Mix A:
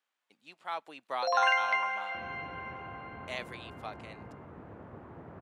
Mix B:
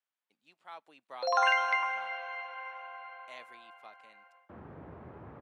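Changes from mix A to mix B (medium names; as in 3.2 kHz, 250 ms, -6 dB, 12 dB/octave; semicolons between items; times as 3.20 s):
speech -10.5 dB; second sound: entry +2.35 s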